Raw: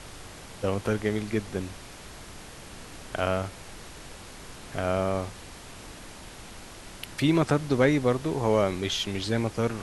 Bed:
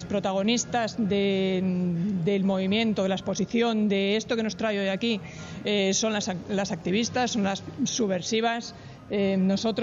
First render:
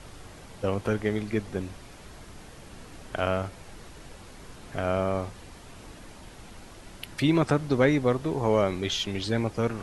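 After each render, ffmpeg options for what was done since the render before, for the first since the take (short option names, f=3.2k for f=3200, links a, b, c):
-af "afftdn=nr=6:nf=-45"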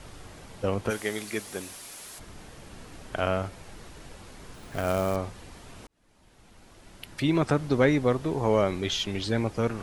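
-filter_complex "[0:a]asplit=3[a][b][c];[a]afade=t=out:st=0.89:d=0.02[d];[b]aemphasis=mode=production:type=riaa,afade=t=in:st=0.89:d=0.02,afade=t=out:st=2.18:d=0.02[e];[c]afade=t=in:st=2.18:d=0.02[f];[d][e][f]amix=inputs=3:normalize=0,asettb=1/sr,asplit=3[g][h][i];[g]atrim=end=4.544[j];[h]atrim=start=4.54:end=5.16,asetpts=PTS-STARTPTS,afade=t=in:d=0.004:c=qsin,afade=t=out:st=0.616:d=0.004:c=qsin,acrusher=bits=4:mode=log:mix=0:aa=0.000001[k];[i]atrim=start=5.156[l];[j][k]acrossfade=d=0.004:c1=hsin:c2=qsin[m];[m][l]acrossfade=d=0.004:c1=qsin:c2=hsin,asplit=2[n][o];[n]atrim=end=5.87,asetpts=PTS-STARTPTS,afade=t=out:st=5.866:d=0.004:c=hsin[p];[o]atrim=start=5.87,asetpts=PTS-STARTPTS,afade=t=in:d=1.77[q];[p][q]concat=n=2:v=0:a=1"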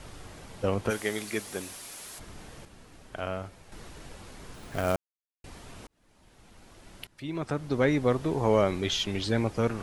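-filter_complex "[0:a]asplit=6[a][b][c][d][e][f];[a]atrim=end=2.652[g];[b]atrim=start=2.648:end=3.722,asetpts=PTS-STARTPTS,volume=-7dB[h];[c]atrim=start=3.718:end=4.96,asetpts=PTS-STARTPTS,afade=t=out:st=1.238:d=0.004:c=hsin[i];[d]atrim=start=4.96:end=5.44,asetpts=PTS-STARTPTS,volume=0[j];[e]atrim=start=5.44:end=7.07,asetpts=PTS-STARTPTS,afade=t=in:d=0.004:c=hsin,afade=t=out:st=1.626:d=0.004:c=hsin:silence=0.105925[k];[f]atrim=start=7.07,asetpts=PTS-STARTPTS,afade=t=in:d=1.14:silence=0.105925[l];[g][h]acrossfade=d=0.004:c1=hsin:c2=hsin[m];[i][j][k][l]concat=n=4:v=0:a=1[n];[m][n]acrossfade=d=0.004:c1=hsin:c2=hsin"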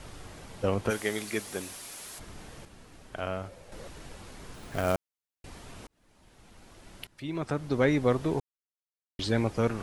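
-filter_complex "[0:a]asettb=1/sr,asplit=3[a][b][c];[a]atrim=end=3.464[d];[b]atrim=start=3.46:end=3.88,asetpts=PTS-STARTPTS,afade=t=in:d=0.004:c=qsin,afade=t=out:st=0.416:d=0.004:c=qsin,equalizer=f=540:t=o:w=0.36:g=13.5[e];[c]atrim=start=3.876[f];[d][e]acrossfade=d=0.004:c1=hsin:c2=qsin[g];[g][f]acrossfade=d=0.004:c1=qsin:c2=hsin,asplit=3[h][i][j];[h]atrim=end=8.4,asetpts=PTS-STARTPTS,afade=t=out:st=8.396:d=0.004:c=hsin[k];[i]atrim=start=8.4:end=9.19,asetpts=PTS-STARTPTS,volume=0[l];[j]atrim=start=9.19,asetpts=PTS-STARTPTS,afade=t=in:d=0.004:c=hsin[m];[k][l][m]concat=n=3:v=0:a=1"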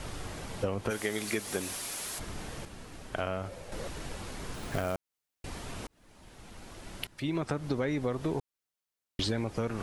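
-filter_complex "[0:a]asplit=2[a][b];[b]alimiter=limit=-19.5dB:level=0:latency=1:release=23,volume=-1dB[c];[a][c]amix=inputs=2:normalize=0,acompressor=threshold=-28dB:ratio=6"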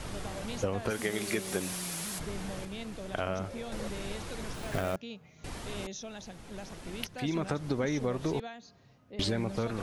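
-filter_complex "[1:a]volume=-17.5dB[a];[0:a][a]amix=inputs=2:normalize=0"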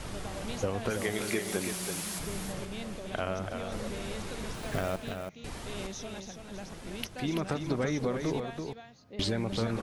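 -af "aecho=1:1:332:0.473"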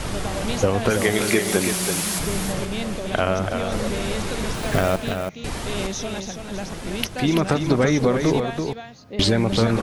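-af "volume=12dB"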